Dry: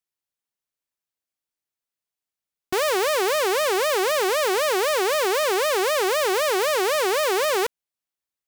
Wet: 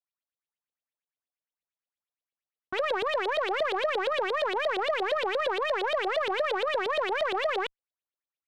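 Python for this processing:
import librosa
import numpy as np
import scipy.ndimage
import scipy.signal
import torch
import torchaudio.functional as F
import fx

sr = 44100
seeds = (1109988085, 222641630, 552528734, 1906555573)

y = fx.filter_lfo_lowpass(x, sr, shape='saw_up', hz=8.6, low_hz=500.0, high_hz=4000.0, q=5.7)
y = fx.cheby_harmonics(y, sr, harmonics=(3,), levels_db=(-15,), full_scale_db=-5.5)
y = 10.0 ** (-16.0 / 20.0) * np.tanh(y / 10.0 ** (-16.0 / 20.0))
y = y * 10.0 ** (-5.0 / 20.0)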